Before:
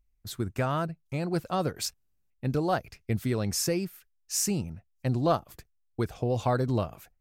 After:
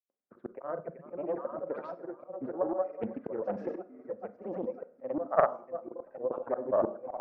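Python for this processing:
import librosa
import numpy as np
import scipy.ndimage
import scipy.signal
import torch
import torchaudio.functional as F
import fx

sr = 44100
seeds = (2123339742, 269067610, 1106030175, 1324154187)

p1 = fx.wiener(x, sr, points=9)
p2 = scipy.signal.sosfilt(scipy.signal.butter(4, 240.0, 'highpass', fs=sr, output='sos'), p1)
p3 = p2 + fx.echo_heads(p2, sr, ms=353, heads='all three', feedback_pct=43, wet_db=-16, dry=0)
p4 = fx.granulator(p3, sr, seeds[0], grain_ms=100.0, per_s=20.0, spray_ms=100.0, spread_st=0)
p5 = fx.peak_eq(p4, sr, hz=550.0, db=13.5, octaves=0.45)
p6 = fx.dereverb_blind(p5, sr, rt60_s=1.7)
p7 = fx.auto_swell(p6, sr, attack_ms=278.0)
p8 = scipy.signal.sosfilt(scipy.signal.butter(4, 1500.0, 'lowpass', fs=sr, output='sos'), p7)
p9 = fx.rev_schroeder(p8, sr, rt60_s=0.45, comb_ms=31, drr_db=12.0)
p10 = fx.level_steps(p9, sr, step_db=24)
p11 = p9 + (p10 * librosa.db_to_amplitude(-2.5))
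p12 = fx.doppler_dist(p11, sr, depth_ms=0.32)
y = p12 * librosa.db_to_amplitude(1.5)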